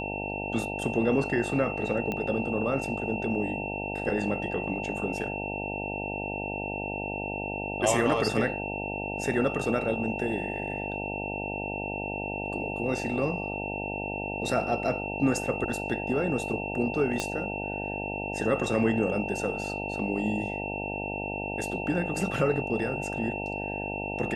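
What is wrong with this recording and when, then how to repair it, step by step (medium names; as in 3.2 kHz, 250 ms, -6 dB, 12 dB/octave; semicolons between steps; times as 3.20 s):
buzz 50 Hz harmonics 18 -35 dBFS
whine 2.7 kHz -35 dBFS
2.12 s: pop -18 dBFS
17.20 s: pop -14 dBFS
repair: de-click; band-stop 2.7 kHz, Q 30; de-hum 50 Hz, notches 18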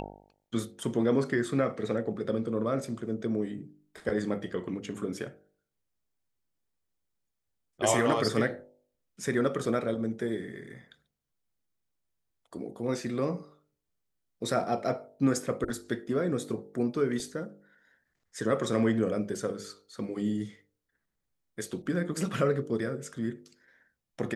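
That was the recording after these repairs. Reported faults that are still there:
17.20 s: pop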